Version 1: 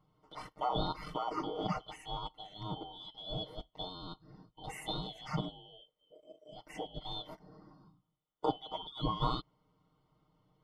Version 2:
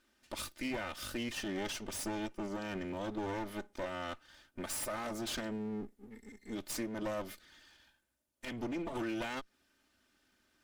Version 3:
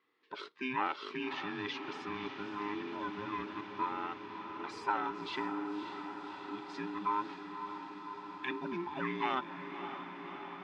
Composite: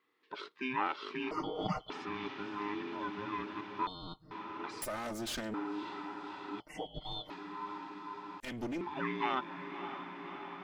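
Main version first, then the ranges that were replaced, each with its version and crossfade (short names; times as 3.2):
3
1.31–1.9 from 1
3.87–4.31 from 1
4.82–5.54 from 2
6.6–7.3 from 1
8.4–8.81 from 2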